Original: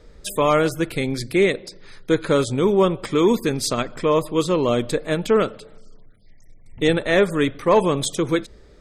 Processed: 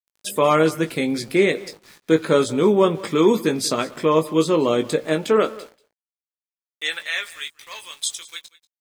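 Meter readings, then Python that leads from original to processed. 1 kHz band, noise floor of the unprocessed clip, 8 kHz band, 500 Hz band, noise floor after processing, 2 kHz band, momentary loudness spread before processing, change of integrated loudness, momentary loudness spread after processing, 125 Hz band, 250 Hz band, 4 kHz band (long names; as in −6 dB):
−0.5 dB, −47 dBFS, +1.0 dB, −0.5 dB, below −85 dBFS, −0.5 dB, 6 LU, 0.0 dB, 17 LU, −3.5 dB, 0.0 dB, +1.0 dB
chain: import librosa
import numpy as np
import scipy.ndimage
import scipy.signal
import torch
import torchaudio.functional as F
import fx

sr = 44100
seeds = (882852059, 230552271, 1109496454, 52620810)

p1 = fx.filter_sweep_highpass(x, sr, from_hz=180.0, to_hz=3300.0, start_s=4.95, end_s=7.49, q=0.94)
p2 = np.where(np.abs(p1) >= 10.0 ** (-43.5 / 20.0), p1, 0.0)
p3 = fx.doubler(p2, sr, ms=19.0, db=-7.5)
y = p3 + fx.echo_single(p3, sr, ms=187, db=-20.0, dry=0)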